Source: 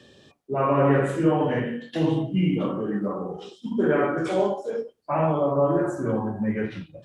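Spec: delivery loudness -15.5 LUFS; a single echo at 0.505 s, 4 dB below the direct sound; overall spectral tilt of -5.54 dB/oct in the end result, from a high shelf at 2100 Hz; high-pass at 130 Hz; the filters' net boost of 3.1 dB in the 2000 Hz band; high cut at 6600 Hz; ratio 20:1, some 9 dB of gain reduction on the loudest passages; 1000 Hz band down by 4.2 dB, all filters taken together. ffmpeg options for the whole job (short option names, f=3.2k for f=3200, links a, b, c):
-af "highpass=130,lowpass=6.6k,equalizer=f=1k:t=o:g=-8,equalizer=f=2k:t=o:g=4,highshelf=f=2.1k:g=6,acompressor=threshold=-25dB:ratio=20,aecho=1:1:505:0.631,volume=14dB"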